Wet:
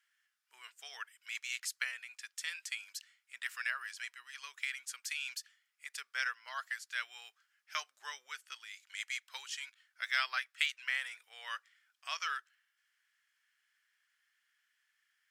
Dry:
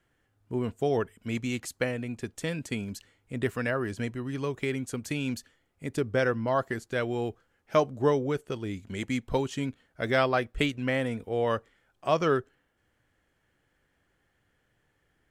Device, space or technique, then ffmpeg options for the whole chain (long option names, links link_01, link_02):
headphones lying on a table: -af "highpass=frequency=1500:width=0.5412,highpass=frequency=1500:width=1.3066,equalizer=frequency=5200:width_type=o:width=0.29:gain=5.5,volume=-1dB"